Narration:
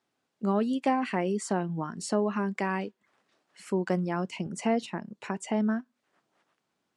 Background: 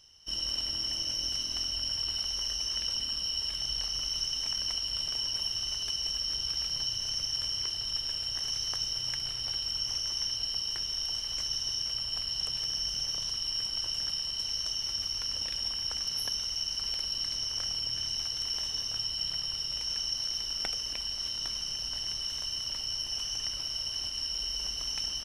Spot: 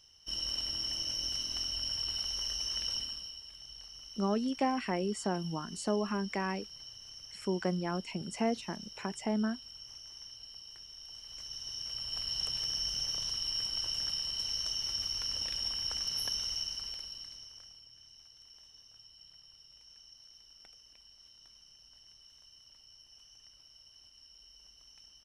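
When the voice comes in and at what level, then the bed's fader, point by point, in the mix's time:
3.75 s, -4.5 dB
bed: 2.97 s -3 dB
3.43 s -16.5 dB
10.99 s -16.5 dB
12.32 s -2 dB
16.53 s -2 dB
17.88 s -23.5 dB

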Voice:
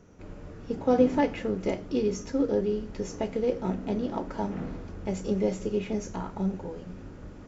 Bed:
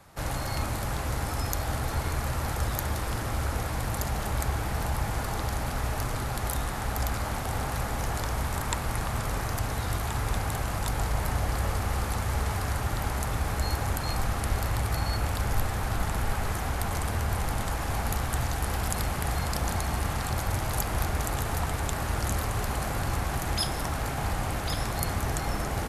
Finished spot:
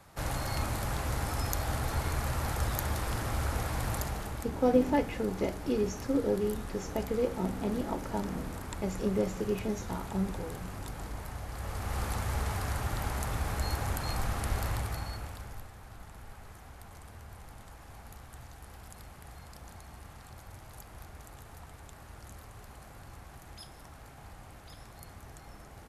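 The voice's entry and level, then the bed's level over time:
3.75 s, -3.0 dB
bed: 3.94 s -2.5 dB
4.5 s -12.5 dB
11.49 s -12.5 dB
12.02 s -4 dB
14.7 s -4 dB
15.73 s -20 dB

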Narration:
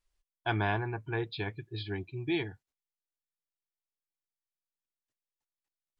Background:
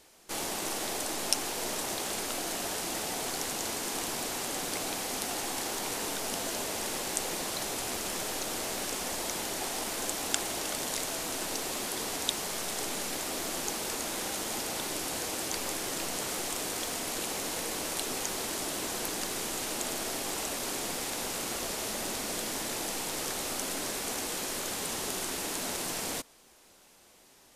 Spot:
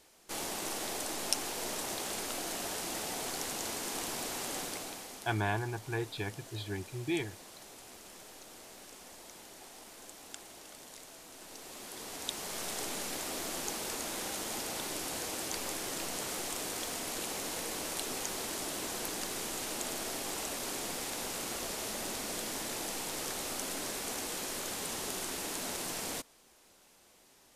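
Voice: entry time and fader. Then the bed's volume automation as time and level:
4.80 s, -2.0 dB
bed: 4.59 s -3.5 dB
5.4 s -17 dB
11.31 s -17 dB
12.64 s -3.5 dB

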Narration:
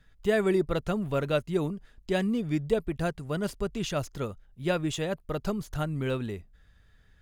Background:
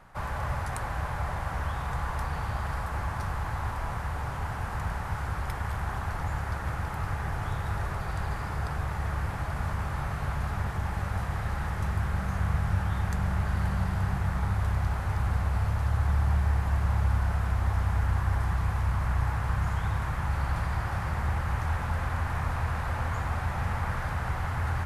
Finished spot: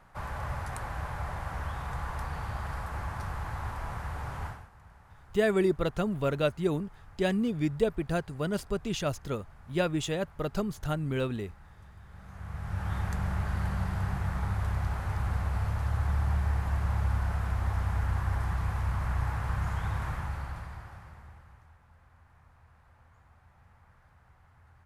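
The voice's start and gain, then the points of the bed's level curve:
5.10 s, -0.5 dB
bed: 4.47 s -4 dB
4.71 s -23 dB
12.03 s -23 dB
12.92 s -3 dB
20.11 s -3 dB
21.78 s -30 dB

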